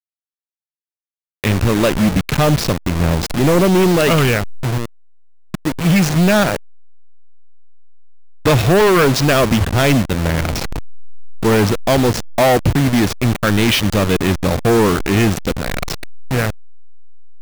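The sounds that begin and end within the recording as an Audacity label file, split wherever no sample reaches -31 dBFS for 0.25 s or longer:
1.440000	4.850000	sound
5.540000	6.560000	sound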